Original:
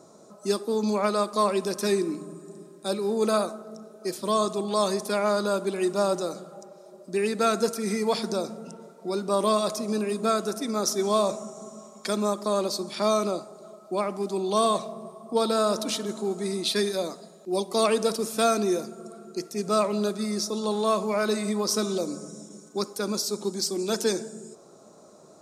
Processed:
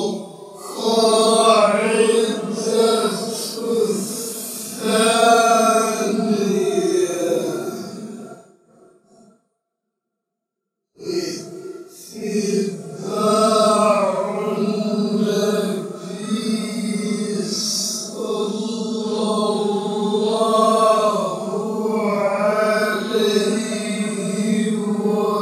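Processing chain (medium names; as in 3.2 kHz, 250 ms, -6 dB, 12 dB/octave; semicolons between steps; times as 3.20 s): hum notches 60/120/180/240/300/360 Hz; gate -38 dBFS, range -41 dB; Paulstretch 6.3×, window 0.05 s, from 17.61 s; trim +6.5 dB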